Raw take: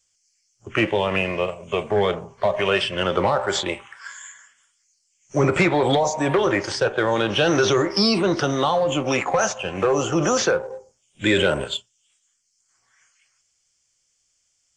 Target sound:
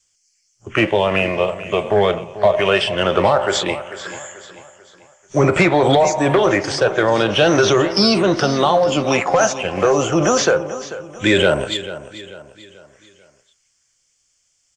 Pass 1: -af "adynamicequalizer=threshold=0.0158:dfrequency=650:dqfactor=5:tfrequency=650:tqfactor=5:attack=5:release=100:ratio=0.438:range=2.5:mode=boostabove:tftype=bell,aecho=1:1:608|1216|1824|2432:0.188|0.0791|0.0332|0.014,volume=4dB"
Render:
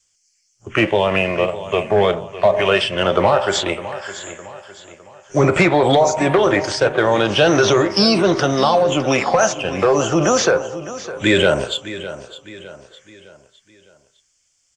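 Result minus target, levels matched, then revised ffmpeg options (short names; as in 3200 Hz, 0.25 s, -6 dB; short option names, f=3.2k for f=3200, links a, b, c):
echo 0.168 s late
-af "adynamicequalizer=threshold=0.0158:dfrequency=650:dqfactor=5:tfrequency=650:tqfactor=5:attack=5:release=100:ratio=0.438:range=2.5:mode=boostabove:tftype=bell,aecho=1:1:440|880|1320|1760:0.188|0.0791|0.0332|0.014,volume=4dB"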